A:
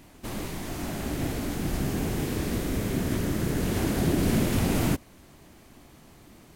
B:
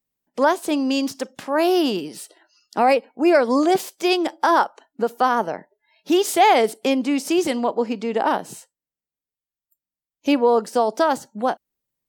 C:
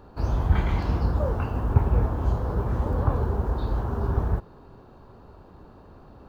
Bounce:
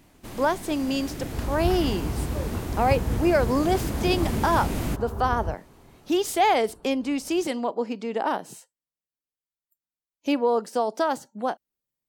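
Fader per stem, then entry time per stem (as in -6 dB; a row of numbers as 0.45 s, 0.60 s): -4.5 dB, -5.5 dB, -6.0 dB; 0.00 s, 0.00 s, 1.15 s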